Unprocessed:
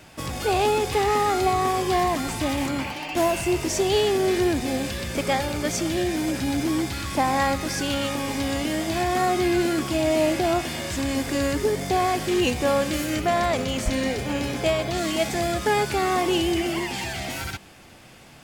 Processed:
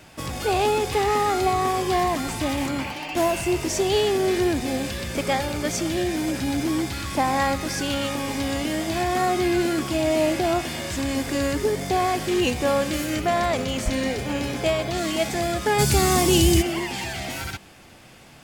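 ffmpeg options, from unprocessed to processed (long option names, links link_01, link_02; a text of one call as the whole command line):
ffmpeg -i in.wav -filter_complex "[0:a]asplit=3[link_01][link_02][link_03];[link_01]afade=type=out:start_time=15.78:duration=0.02[link_04];[link_02]bass=frequency=250:gain=14,treble=frequency=4000:gain=14,afade=type=in:start_time=15.78:duration=0.02,afade=type=out:start_time=16.61:duration=0.02[link_05];[link_03]afade=type=in:start_time=16.61:duration=0.02[link_06];[link_04][link_05][link_06]amix=inputs=3:normalize=0" out.wav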